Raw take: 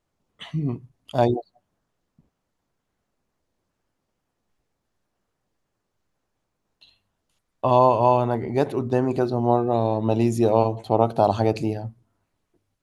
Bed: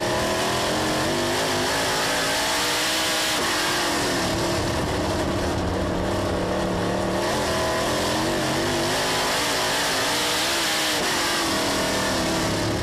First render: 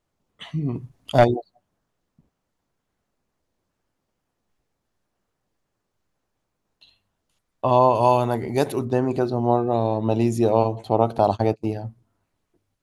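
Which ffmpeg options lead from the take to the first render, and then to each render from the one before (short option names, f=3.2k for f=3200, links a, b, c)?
-filter_complex "[0:a]asplit=3[a][b][c];[a]afade=t=out:st=0.74:d=0.02[d];[b]aeval=exprs='0.531*sin(PI/2*1.58*val(0)/0.531)':c=same,afade=t=in:st=0.74:d=0.02,afade=t=out:st=1.23:d=0.02[e];[c]afade=t=in:st=1.23:d=0.02[f];[d][e][f]amix=inputs=3:normalize=0,asettb=1/sr,asplit=3[g][h][i];[g]atrim=end=7.954[j];[h]atrim=start=7.95:end=8.85,asetpts=PTS-STARTPTS,afade=t=in:d=0.004:c=qsin,afade=t=out:st=0.896:d=0.004:c=qsin,aemphasis=mode=production:type=75kf[k];[i]atrim=start=8.846[l];[j][k]acrossfade=d=0.004:c1=hsin:c2=qsin[m];[m][l]acrossfade=d=0.004:c1=qsin:c2=hsin,asettb=1/sr,asplit=3[n][o][p];[n]atrim=end=11.184[q];[o]atrim=start=11.18:end=11.73,asetpts=PTS-STARTPTS,afade=t=in:d=0.004:c=qsin,afade=t=out:st=0.546:d=0.004:c=qsin,agate=range=-35dB:threshold=-26dB:ratio=16:release=100:detection=peak[r];[p]atrim=start=11.726[s];[q][r]acrossfade=d=0.004:c1=hsin:c2=qsin[t];[t][s]acrossfade=d=0.004:c1=qsin:c2=hsin"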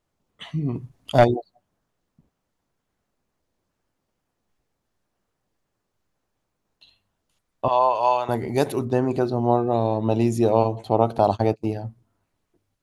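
-filter_complex "[0:a]asettb=1/sr,asplit=3[a][b][c];[a]atrim=end=7.684[d];[b]atrim=start=7.68:end=8.29,asetpts=PTS-STARTPTS,afade=t=in:d=0.004:c=qsin,afade=t=out:st=0.606:d=0.004:c=qsin,acrossover=split=540 6400:gain=0.0794 1 0.0891[e][f][g];[e][f][g]amix=inputs=3:normalize=0[h];[c]atrim=start=8.286[i];[d][h]acrossfade=d=0.004:c1=hsin:c2=qsin[j];[j][i]acrossfade=d=0.004:c1=qsin:c2=hsin"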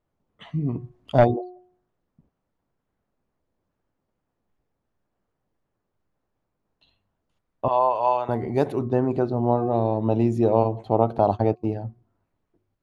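-af "lowpass=f=1.3k:p=1,bandreject=f=362.2:t=h:w=4,bandreject=f=724.4:t=h:w=4,bandreject=f=1.0866k:t=h:w=4"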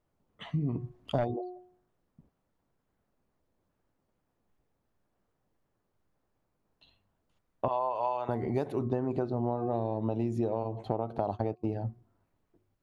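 -af "alimiter=limit=-9.5dB:level=0:latency=1:release=266,acompressor=threshold=-27dB:ratio=6"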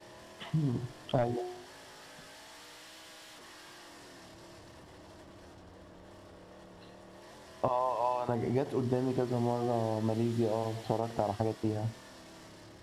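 -filter_complex "[1:a]volume=-29dB[a];[0:a][a]amix=inputs=2:normalize=0"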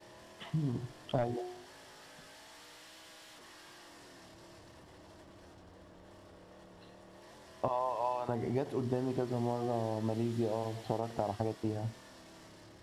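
-af "volume=-3dB"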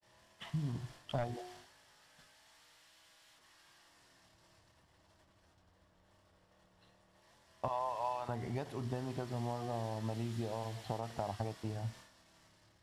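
-af "agate=range=-33dB:threshold=-48dB:ratio=3:detection=peak,equalizer=f=360:w=0.81:g=-9.5"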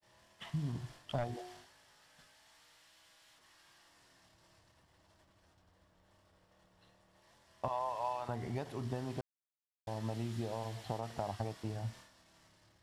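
-filter_complex "[0:a]asplit=3[a][b][c];[a]atrim=end=9.21,asetpts=PTS-STARTPTS,afade=t=out:st=9.206:d=0.004:c=hsin[d];[b]atrim=start=9.21:end=9.87,asetpts=PTS-STARTPTS,volume=0[e];[c]atrim=start=9.87,asetpts=PTS-STARTPTS,afade=t=in:d=0.004:c=hsin[f];[d][e][f]concat=n=3:v=0:a=1"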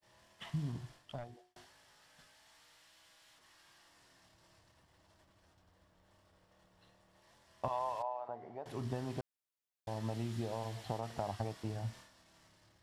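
-filter_complex "[0:a]asettb=1/sr,asplit=3[a][b][c];[a]atrim=end=8.024[d];[b]atrim=start=8.02:end=8.66,asetpts=PTS-STARTPTS,afade=t=in:d=0.004:c=qsin,afade=t=out:st=0.636:d=0.004:c=qsin,bandpass=f=680:t=q:w=1.8[e];[c]atrim=start=8.656[f];[d][e]acrossfade=d=0.004:c1=hsin:c2=qsin[g];[g][f]acrossfade=d=0.004:c1=qsin:c2=hsin,asplit=2[h][i];[h]atrim=end=1.56,asetpts=PTS-STARTPTS,afade=t=out:st=0.54:d=1.02[j];[i]atrim=start=1.56,asetpts=PTS-STARTPTS,afade=t=in:d=0.004:c=hsin[k];[j][k]concat=n=2:v=0:a=1"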